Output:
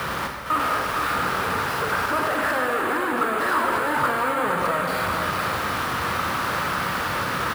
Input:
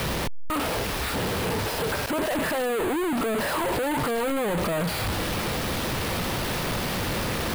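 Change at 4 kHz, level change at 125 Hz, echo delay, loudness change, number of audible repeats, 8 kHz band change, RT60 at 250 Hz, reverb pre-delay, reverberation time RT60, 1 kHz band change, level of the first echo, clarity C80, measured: -1.0 dB, -3.5 dB, 459 ms, +3.5 dB, 1, -3.0 dB, 2.2 s, 7 ms, 2.1 s, +8.0 dB, -6.0 dB, 1.5 dB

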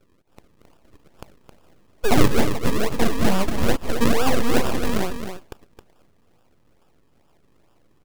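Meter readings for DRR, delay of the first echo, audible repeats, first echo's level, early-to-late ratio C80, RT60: no reverb, 267 ms, 1, -8.5 dB, no reverb, no reverb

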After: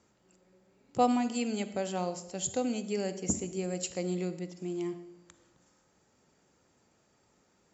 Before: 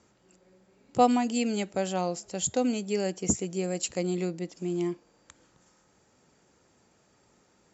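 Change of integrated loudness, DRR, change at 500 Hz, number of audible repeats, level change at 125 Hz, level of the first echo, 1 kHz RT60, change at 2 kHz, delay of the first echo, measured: -4.0 dB, 11.5 dB, -4.0 dB, no echo, -3.5 dB, no echo, 0.85 s, -4.0 dB, no echo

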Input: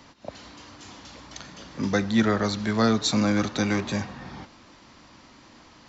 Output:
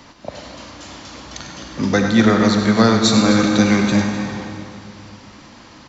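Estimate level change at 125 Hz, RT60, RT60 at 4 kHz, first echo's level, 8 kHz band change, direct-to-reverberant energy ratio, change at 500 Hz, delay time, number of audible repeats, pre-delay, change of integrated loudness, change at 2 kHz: +9.0 dB, 2.5 s, 2.3 s, -10.0 dB, no reading, 3.0 dB, +8.5 dB, 99 ms, 2, 38 ms, +9.0 dB, +9.0 dB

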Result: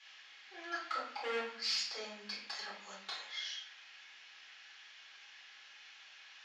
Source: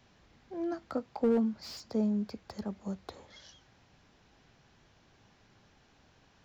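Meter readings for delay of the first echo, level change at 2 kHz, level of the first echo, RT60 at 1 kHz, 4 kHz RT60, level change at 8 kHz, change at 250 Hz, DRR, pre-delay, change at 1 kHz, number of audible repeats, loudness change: no echo, +12.5 dB, no echo, 0.55 s, 0.45 s, no reading, -24.5 dB, -6.5 dB, 3 ms, +2.0 dB, no echo, -5.5 dB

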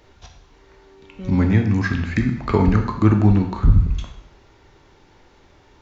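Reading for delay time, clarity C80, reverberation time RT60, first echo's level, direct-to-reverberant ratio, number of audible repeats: no echo, 10.0 dB, 0.75 s, no echo, 4.0 dB, no echo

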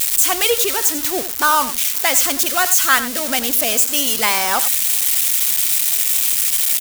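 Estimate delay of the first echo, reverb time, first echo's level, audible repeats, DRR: 92 ms, no reverb, -13.0 dB, 1, no reverb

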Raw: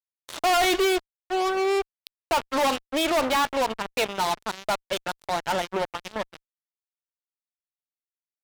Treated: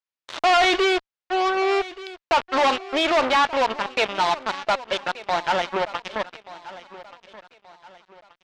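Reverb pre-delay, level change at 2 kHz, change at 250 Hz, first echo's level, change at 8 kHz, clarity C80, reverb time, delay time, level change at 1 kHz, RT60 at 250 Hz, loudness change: no reverb, +5.0 dB, +0.5 dB, -17.5 dB, -4.5 dB, no reverb, no reverb, 1179 ms, +4.5 dB, no reverb, +3.5 dB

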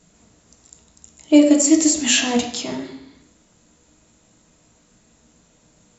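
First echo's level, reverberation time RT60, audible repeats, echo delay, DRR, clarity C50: no echo, 0.70 s, no echo, no echo, 1.0 dB, 7.0 dB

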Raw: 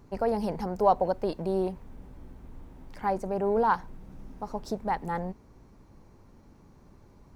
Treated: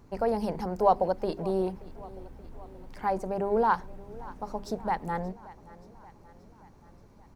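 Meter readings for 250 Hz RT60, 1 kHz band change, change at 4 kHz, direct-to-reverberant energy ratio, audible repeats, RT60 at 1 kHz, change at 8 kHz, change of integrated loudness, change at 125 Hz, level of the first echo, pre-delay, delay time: no reverb, 0.0 dB, 0.0 dB, no reverb, 4, no reverb, no reading, -0.5 dB, -0.5 dB, -20.0 dB, no reverb, 578 ms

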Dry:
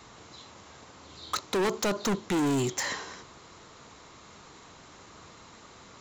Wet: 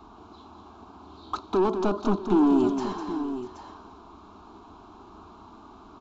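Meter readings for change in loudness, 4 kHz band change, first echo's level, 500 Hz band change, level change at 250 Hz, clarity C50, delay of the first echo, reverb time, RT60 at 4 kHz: +4.0 dB, -9.0 dB, -8.0 dB, +4.5 dB, +7.5 dB, no reverb, 202 ms, no reverb, no reverb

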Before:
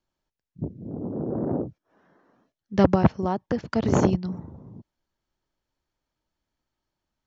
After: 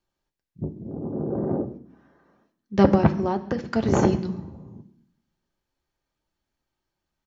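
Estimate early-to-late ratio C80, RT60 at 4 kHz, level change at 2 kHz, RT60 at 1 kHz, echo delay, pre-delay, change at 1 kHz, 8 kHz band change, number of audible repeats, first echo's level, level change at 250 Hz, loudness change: 16.5 dB, 0.80 s, +1.5 dB, 0.65 s, 136 ms, 3 ms, +1.0 dB, no reading, 1, -22.5 dB, +1.0 dB, +1.0 dB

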